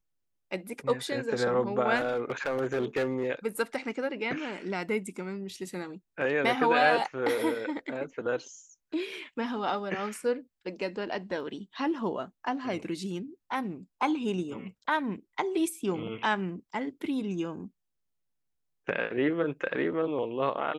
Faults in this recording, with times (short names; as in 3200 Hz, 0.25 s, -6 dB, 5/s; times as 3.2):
1.96–3.29 clipped -24 dBFS